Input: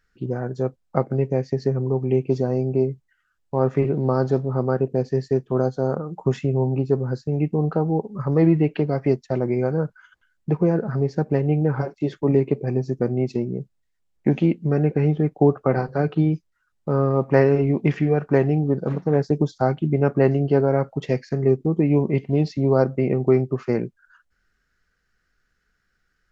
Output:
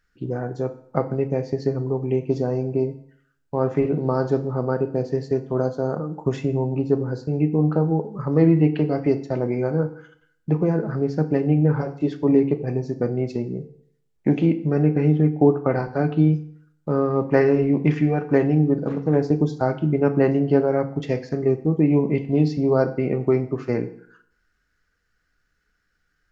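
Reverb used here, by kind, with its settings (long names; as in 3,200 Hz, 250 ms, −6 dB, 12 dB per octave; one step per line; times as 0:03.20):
feedback delay network reverb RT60 0.62 s, low-frequency decay 1×, high-frequency decay 0.9×, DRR 8 dB
level −1 dB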